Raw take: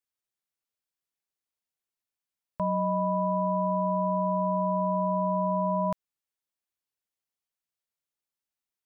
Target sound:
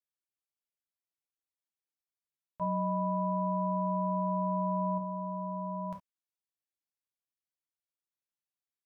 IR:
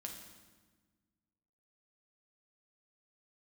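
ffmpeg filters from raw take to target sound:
-filter_complex "[0:a]asettb=1/sr,asplit=3[a][b][c];[a]atrim=end=2.614[d];[b]atrim=start=2.61:end=4.98,asetpts=PTS-STARTPTS,afade=t=in:d=0.004:c=qsin,afade=t=out:st=2.366:d=0.004:c=qsin,acontrast=43[e];[c]atrim=start=4.976[f];[d][e]acrossfade=d=0.004:c1=hsin:c2=qsin[g];[g][f]acrossfade=d=0.004:c1=qsin:c2=hsin[h];[1:a]atrim=start_sample=2205,afade=t=out:st=0.16:d=0.01,atrim=end_sample=7497,asetrate=70560,aresample=44100[i];[h][i]afir=irnorm=-1:irlink=0,volume=-2.5dB"

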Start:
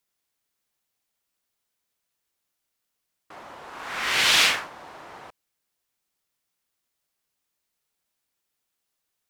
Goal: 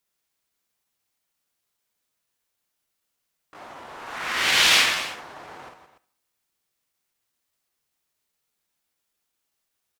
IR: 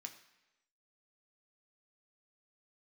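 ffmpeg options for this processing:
-filter_complex "[0:a]aecho=1:1:43|51|150|162|266:0.168|0.531|0.237|0.224|0.188,atempo=0.93,asplit=2[a][b];[1:a]atrim=start_sample=2205,adelay=68[c];[b][c]afir=irnorm=-1:irlink=0,volume=-11.5dB[d];[a][d]amix=inputs=2:normalize=0"

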